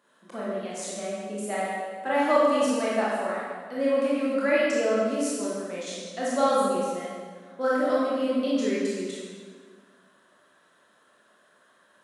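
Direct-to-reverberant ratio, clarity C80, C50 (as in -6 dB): -8.0 dB, -0.5 dB, -3.0 dB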